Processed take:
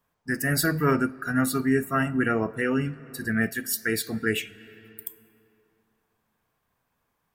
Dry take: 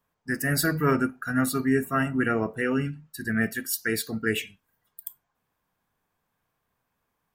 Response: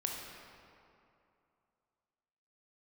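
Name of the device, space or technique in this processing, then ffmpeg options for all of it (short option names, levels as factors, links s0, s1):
ducked reverb: -filter_complex "[0:a]asplit=3[s0][s1][s2];[1:a]atrim=start_sample=2205[s3];[s1][s3]afir=irnorm=-1:irlink=0[s4];[s2]apad=whole_len=323717[s5];[s4][s5]sidechaincompress=threshold=0.0282:ratio=8:attack=9.7:release=458,volume=0.282[s6];[s0][s6]amix=inputs=2:normalize=0"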